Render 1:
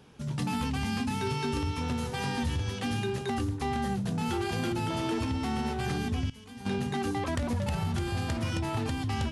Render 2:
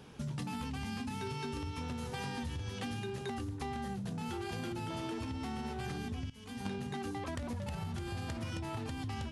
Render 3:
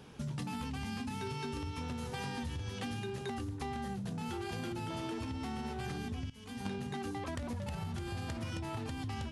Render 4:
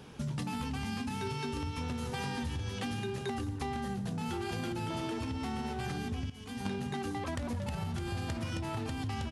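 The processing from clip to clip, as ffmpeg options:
ffmpeg -i in.wav -af "acompressor=threshold=-38dB:ratio=10,volume=2dB" out.wav
ffmpeg -i in.wav -af anull out.wav
ffmpeg -i in.wav -filter_complex "[0:a]asplit=2[link_01][link_02];[link_02]adelay=174.9,volume=-16dB,highshelf=frequency=4000:gain=-3.94[link_03];[link_01][link_03]amix=inputs=2:normalize=0,volume=3dB" out.wav

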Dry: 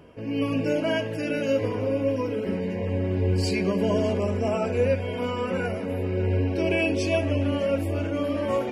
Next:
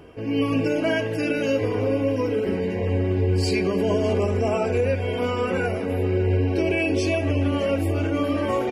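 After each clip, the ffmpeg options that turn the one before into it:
ffmpeg -i in.wav -af "aecho=1:1:2.6:0.34,alimiter=limit=-17dB:level=0:latency=1:release=119,volume=4dB" out.wav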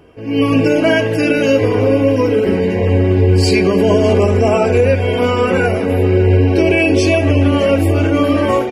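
ffmpeg -i in.wav -af "dynaudnorm=framelen=220:gausssize=3:maxgain=11.5dB" out.wav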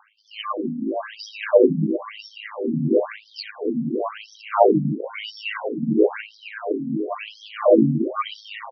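ffmpeg -i in.wav -af "aphaser=in_gain=1:out_gain=1:delay=1.1:decay=0.61:speed=0.65:type=sinusoidal,aeval=exprs='val(0)*sin(2*PI*53*n/s)':channel_layout=same,afftfilt=real='re*between(b*sr/1024,200*pow(4500/200,0.5+0.5*sin(2*PI*0.98*pts/sr))/1.41,200*pow(4500/200,0.5+0.5*sin(2*PI*0.98*pts/sr))*1.41)':imag='im*between(b*sr/1024,200*pow(4500/200,0.5+0.5*sin(2*PI*0.98*pts/sr))/1.41,200*pow(4500/200,0.5+0.5*sin(2*PI*0.98*pts/sr))*1.41)':win_size=1024:overlap=0.75,volume=-2dB" out.wav

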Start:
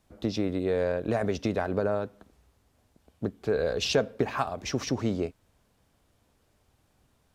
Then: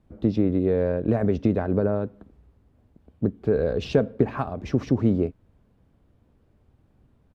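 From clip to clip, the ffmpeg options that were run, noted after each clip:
ffmpeg -i in.wav -af "firequalizer=gain_entry='entry(220,0);entry(700,-9);entry(5800,-23)':delay=0.05:min_phase=1,volume=8.5dB" out.wav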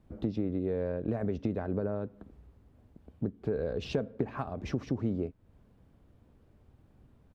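ffmpeg -i in.wav -af "acompressor=threshold=-36dB:ratio=2" out.wav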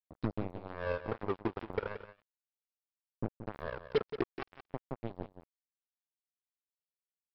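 ffmpeg -i in.wav -af "aphaser=in_gain=1:out_gain=1:delay=2.9:decay=0.73:speed=0.35:type=triangular,aresample=11025,acrusher=bits=3:mix=0:aa=0.5,aresample=44100,aecho=1:1:176:0.266,volume=-5.5dB" out.wav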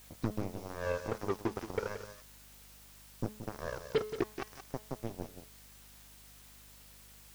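ffmpeg -i in.wav -af "aeval=exprs='val(0)+0.5*0.00531*sgn(val(0))':channel_layout=same,bandreject=frequency=213.6:width_type=h:width=4,bandreject=frequency=427.2:width_type=h:width=4,bandreject=frequency=640.8:width_type=h:width=4,bandreject=frequency=854.4:width_type=h:width=4,bandreject=frequency=1068:width_type=h:width=4,bandreject=frequency=1281.6:width_type=h:width=4,bandreject=frequency=1495.2:width_type=h:width=4,bandreject=frequency=1708.8:width_type=h:width=4,bandreject=frequency=1922.4:width_type=h:width=4,bandreject=frequency=2136:width_type=h:width=4,bandreject=frequency=2349.6:width_type=h:width=4,bandreject=frequency=2563.2:width_type=h:width=4,bandreject=frequency=2776.8:width_type=h:width=4,bandreject=frequency=2990.4:width_type=h:width=4,bandreject=frequency=3204:width_type=h:width=4,bandreject=frequency=3417.6:width_type=h:width=4,bandreject=frequency=3631.2:width_type=h:width=4,bandreject=frequency=3844.8:width_type=h:width=4,bandreject=frequency=4058.4:width_type=h:width=4,bandreject=frequency=4272:width_type=h:width=4,bandreject=frequency=4485.6:width_type=h:width=4,bandreject=frequency=4699.2:width_type=h:width=4,bandreject=frequency=4912.8:width_type=h:width=4,bandreject=frequency=5126.4:width_type=h:width=4,bandreject=frequency=5340:width_type=h:width=4,bandreject=frequency=5553.6:width_type=h:width=4,bandreject=frequency=5767.2:width_type=h:width=4,bandreject=frequency=5980.8:width_type=h:width=4,bandreject=frequency=6194.4:width_type=h:width=4,aeval=exprs='val(0)+0.001*(sin(2*PI*50*n/s)+sin(2*PI*2*50*n/s)/2+sin(2*PI*3*50*n/s)/3+sin(2*PI*4*50*n/s)/4+sin(2*PI*5*50*n/s)/5)':channel_layout=same" out.wav

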